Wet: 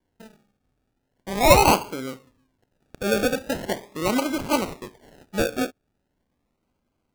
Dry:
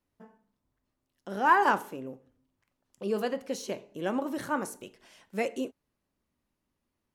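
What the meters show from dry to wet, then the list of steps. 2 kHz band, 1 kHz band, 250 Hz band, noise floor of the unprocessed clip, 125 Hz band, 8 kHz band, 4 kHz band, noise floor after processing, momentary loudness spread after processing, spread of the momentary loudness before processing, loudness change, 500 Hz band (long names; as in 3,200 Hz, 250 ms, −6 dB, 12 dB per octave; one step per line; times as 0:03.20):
+4.5 dB, +4.5 dB, +8.5 dB, −83 dBFS, +16.0 dB, +15.5 dB, +15.5 dB, −76 dBFS, 17 LU, 19 LU, +7.5 dB, +9.5 dB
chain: gain on a spectral selection 0:02.72–0:03.04, 700–7,200 Hz +10 dB
sample-and-hold swept by an LFO 34×, swing 60% 0.4 Hz
level +7.5 dB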